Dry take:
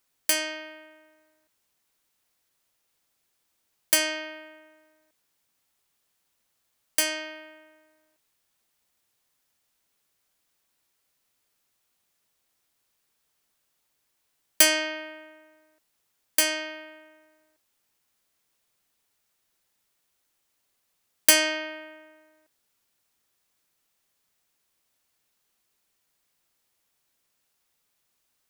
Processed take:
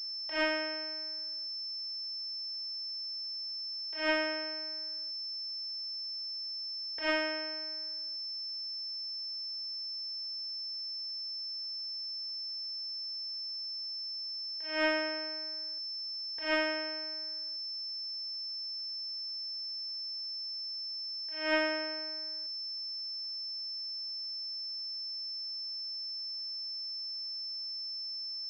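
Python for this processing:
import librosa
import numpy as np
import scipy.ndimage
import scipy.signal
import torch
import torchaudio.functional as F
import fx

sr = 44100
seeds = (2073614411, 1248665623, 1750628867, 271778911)

y = fx.over_compress(x, sr, threshold_db=-30.0, ratio=-0.5)
y = fx.pwm(y, sr, carrier_hz=5300.0)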